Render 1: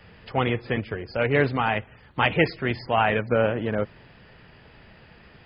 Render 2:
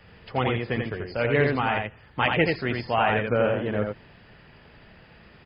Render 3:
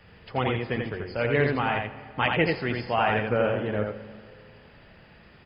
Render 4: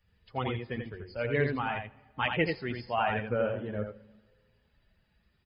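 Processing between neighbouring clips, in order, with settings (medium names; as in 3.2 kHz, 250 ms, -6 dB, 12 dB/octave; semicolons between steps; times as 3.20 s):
delay 85 ms -4 dB; trim -2 dB
Schroeder reverb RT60 2.3 s, combs from 33 ms, DRR 14 dB; trim -1.5 dB
expander on every frequency bin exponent 1.5; trim -3 dB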